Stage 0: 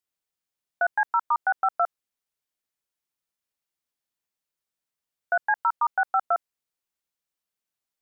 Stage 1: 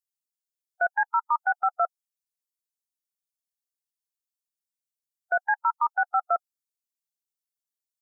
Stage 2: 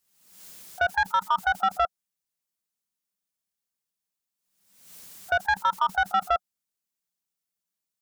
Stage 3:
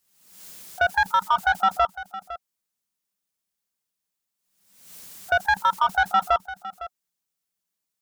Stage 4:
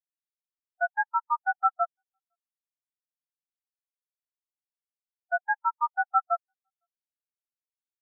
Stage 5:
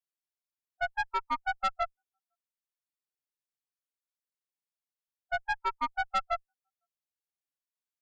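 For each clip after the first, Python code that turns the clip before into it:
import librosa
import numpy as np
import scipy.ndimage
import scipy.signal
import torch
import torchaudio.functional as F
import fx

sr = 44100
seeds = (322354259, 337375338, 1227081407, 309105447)

y1 = fx.bin_expand(x, sr, power=1.5)
y2 = fx.peak_eq(y1, sr, hz=190.0, db=11.0, octaves=0.39)
y2 = 10.0 ** (-20.5 / 20.0) * np.tanh(y2 / 10.0 ** (-20.5 / 20.0))
y2 = fx.pre_swell(y2, sr, db_per_s=67.0)
y2 = y2 * 10.0 ** (4.0 / 20.0)
y3 = y2 + 10.0 ** (-14.5 / 20.0) * np.pad(y2, (int(507 * sr / 1000.0), 0))[:len(y2)]
y3 = y3 * 10.0 ** (3.0 / 20.0)
y4 = fx.spectral_expand(y3, sr, expansion=4.0)
y5 = fx.tube_stage(y4, sr, drive_db=23.0, bias=0.6)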